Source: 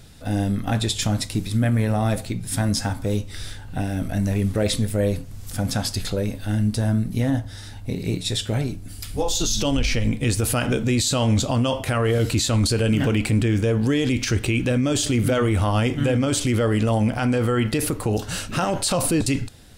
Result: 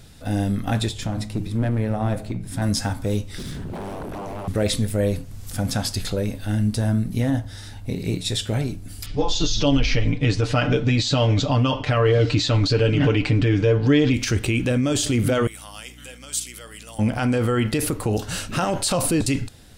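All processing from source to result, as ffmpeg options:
-filter_complex "[0:a]asettb=1/sr,asplit=3[s0][s1][s2];[s0]atrim=end=0.894[s3];[s1]atrim=start=0.89:end=2.62,asetpts=PTS-STARTPTS,afade=t=in:d=0.004:c=qsin,afade=t=out:st=1.726:d=0.004:c=qsin,highshelf=f=2200:g=-11,bandreject=f=105.7:t=h:w=4,bandreject=f=211.4:t=h:w=4,bandreject=f=317.1:t=h:w=4,bandreject=f=422.8:t=h:w=4,bandreject=f=528.5:t=h:w=4,bandreject=f=634.2:t=h:w=4,bandreject=f=739.9:t=h:w=4,bandreject=f=845.6:t=h:w=4,bandreject=f=951.3:t=h:w=4,bandreject=f=1057:t=h:w=4,bandreject=f=1162.7:t=h:w=4,bandreject=f=1268.4:t=h:w=4,bandreject=f=1374.1:t=h:w=4,bandreject=f=1479.8:t=h:w=4,bandreject=f=1585.5:t=h:w=4,bandreject=f=1691.2:t=h:w=4,bandreject=f=1796.9:t=h:w=4,bandreject=f=1902.6:t=h:w=4,bandreject=f=2008.3:t=h:w=4,bandreject=f=2114:t=h:w=4,bandreject=f=2219.7:t=h:w=4,bandreject=f=2325.4:t=h:w=4,bandreject=f=2431.1:t=h:w=4,bandreject=f=2536.8:t=h:w=4,bandreject=f=2642.5:t=h:w=4,bandreject=f=2748.2:t=h:w=4,bandreject=f=2853.9:t=h:w=4,bandreject=f=2959.6:t=h:w=4,aeval=exprs='clip(val(0),-1,0.0944)':c=same[s4];[s2]atrim=start=2.616[s5];[s3][s4]acrossfade=d=0.004:c1=hsin:c2=qsin[s6];[s6][s5]acrossfade=d=0.004:c1=qsin:c2=hsin,asettb=1/sr,asplit=3[s7][s8][s9];[s7]atrim=end=3.384[s10];[s8]atrim=start=3.38:end=4.48,asetpts=PTS-STARTPTS,afade=t=in:d=0.004:c=qsin,afade=t=out:st=1.096:d=0.004:c=qsin,lowshelf=f=280:t=q:w=1.5:g=12,acompressor=threshold=0.141:ratio=6:attack=3.2:release=140:knee=1:detection=peak,aeval=exprs='0.0473*(abs(mod(val(0)/0.0473+3,4)-2)-1)':c=same[s11];[s9]atrim=start=4.476[s12];[s10][s11]acrossfade=d=0.004:c1=hsin:c2=qsin[s13];[s13][s12]acrossfade=d=0.004:c1=qsin:c2=hsin,asettb=1/sr,asplit=3[s14][s15][s16];[s14]atrim=end=9.064[s17];[s15]atrim=start=9.06:end=14.14,asetpts=PTS-STARTPTS,afade=t=in:d=0.004:c=qsin,afade=t=out:st=5.076:d=0.004:c=qsin,lowpass=f=5300:w=0.5412,lowpass=f=5300:w=1.3066,aecho=1:1:6.8:0.74,atrim=end_sample=224028[s18];[s16]atrim=start=14.136[s19];[s17][s18]acrossfade=d=0.004:c1=hsin:c2=qsin[s20];[s20][s19]acrossfade=d=0.004:c1=qsin:c2=hsin,asettb=1/sr,asplit=3[s21][s22][s23];[s21]atrim=end=15.474[s24];[s22]atrim=start=15.47:end=16.99,asetpts=PTS-STARTPTS,afade=t=in:d=0.004:c=qsin,afade=t=out:st=1.516:d=0.004:c=qsin,aderivative,aeval=exprs='val(0)+0.00562*(sin(2*PI*60*n/s)+sin(2*PI*2*60*n/s)/2+sin(2*PI*3*60*n/s)/3+sin(2*PI*4*60*n/s)/4+sin(2*PI*5*60*n/s)/5)':c=same[s25];[s23]atrim=start=16.986[s26];[s24][s25]acrossfade=d=0.004:c1=hsin:c2=qsin[s27];[s27][s26]acrossfade=d=0.004:c1=qsin:c2=hsin"

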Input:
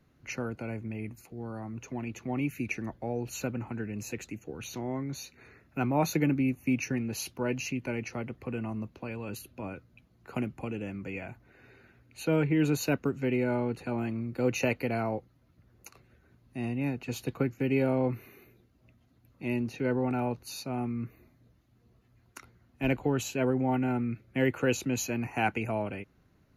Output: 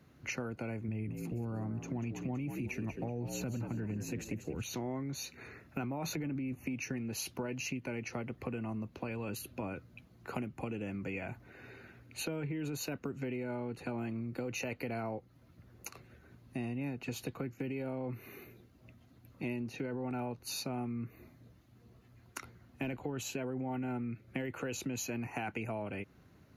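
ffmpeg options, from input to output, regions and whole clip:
-filter_complex "[0:a]asettb=1/sr,asplit=3[s0][s1][s2];[s0]atrim=end=0.884[s3];[s1]atrim=start=0.88:end=4.63,asetpts=PTS-STARTPTS,afade=t=in:d=0.004:c=qsin,afade=t=out:st=3.746:d=0.004:c=qsin,lowshelf=f=200:g=12,asplit=5[s4][s5][s6][s7][s8];[s5]adelay=189,afreqshift=61,volume=0.316[s9];[s6]adelay=378,afreqshift=122,volume=0.105[s10];[s7]adelay=567,afreqshift=183,volume=0.0343[s11];[s8]adelay=756,afreqshift=244,volume=0.0114[s12];[s4][s9][s10][s11][s12]amix=inputs=5:normalize=0,atrim=end_sample=165375[s13];[s2]atrim=start=4.626[s14];[s3][s13]acrossfade=d=0.004:c1=hsin:c2=qsin[s15];[s15][s14]acrossfade=d=0.004:c1=qsin:c2=hsin,asettb=1/sr,asplit=3[s16][s17][s18];[s16]atrim=end=6.044[s19];[s17]atrim=start=6.04:end=6.74,asetpts=PTS-STARTPTS,afade=t=in:d=0.004:c=qsin,afade=t=out:st=0.696:d=0.004:c=qsin,acontrast=74,highshelf=f=4900:g=-7.5[s20];[s18]atrim=start=6.736[s21];[s19][s20]acrossfade=d=0.004:c1=hsin:c2=qsin[s22];[s22][s21]acrossfade=d=0.004:c1=qsin:c2=hsin,highpass=61,alimiter=limit=0.0708:level=0:latency=1:release=14,acompressor=threshold=0.01:ratio=6,volume=1.68"

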